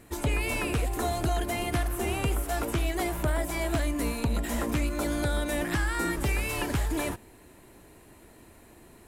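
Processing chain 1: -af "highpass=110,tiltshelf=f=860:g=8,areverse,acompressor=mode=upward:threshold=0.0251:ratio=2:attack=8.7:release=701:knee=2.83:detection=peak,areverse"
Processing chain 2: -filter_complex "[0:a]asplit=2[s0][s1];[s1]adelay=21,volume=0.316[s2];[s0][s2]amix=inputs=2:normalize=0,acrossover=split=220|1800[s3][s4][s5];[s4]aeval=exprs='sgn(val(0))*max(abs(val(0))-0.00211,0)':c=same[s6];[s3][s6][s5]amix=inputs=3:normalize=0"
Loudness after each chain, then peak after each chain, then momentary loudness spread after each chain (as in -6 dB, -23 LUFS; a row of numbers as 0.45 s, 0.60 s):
-27.5 LUFS, -29.0 LUFS; -12.0 dBFS, -15.5 dBFS; 19 LU, 1 LU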